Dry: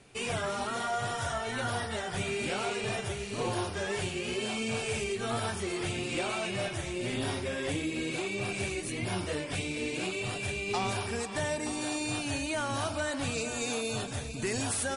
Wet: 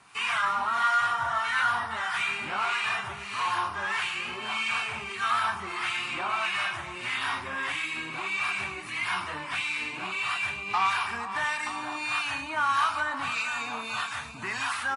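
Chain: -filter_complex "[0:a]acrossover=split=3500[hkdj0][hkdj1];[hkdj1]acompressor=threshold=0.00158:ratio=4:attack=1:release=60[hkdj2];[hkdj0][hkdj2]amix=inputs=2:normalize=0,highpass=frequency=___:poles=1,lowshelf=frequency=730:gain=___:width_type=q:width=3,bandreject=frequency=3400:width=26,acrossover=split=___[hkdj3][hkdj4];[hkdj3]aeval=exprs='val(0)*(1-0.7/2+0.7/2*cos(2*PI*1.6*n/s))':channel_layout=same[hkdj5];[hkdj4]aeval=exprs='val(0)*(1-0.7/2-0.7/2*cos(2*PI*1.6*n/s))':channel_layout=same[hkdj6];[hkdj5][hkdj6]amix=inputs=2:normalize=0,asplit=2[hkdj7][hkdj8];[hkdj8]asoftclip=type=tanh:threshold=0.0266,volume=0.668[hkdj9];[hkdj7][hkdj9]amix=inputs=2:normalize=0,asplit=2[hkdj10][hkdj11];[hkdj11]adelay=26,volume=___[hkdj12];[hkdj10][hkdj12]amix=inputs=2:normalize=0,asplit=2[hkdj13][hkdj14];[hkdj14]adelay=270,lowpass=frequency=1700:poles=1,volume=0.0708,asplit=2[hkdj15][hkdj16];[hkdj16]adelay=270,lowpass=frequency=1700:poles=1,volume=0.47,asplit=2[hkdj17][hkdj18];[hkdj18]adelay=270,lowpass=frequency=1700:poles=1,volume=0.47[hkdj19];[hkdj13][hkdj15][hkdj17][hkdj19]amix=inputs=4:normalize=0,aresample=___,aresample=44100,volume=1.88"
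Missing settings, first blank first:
130, -13.5, 970, 0.282, 32000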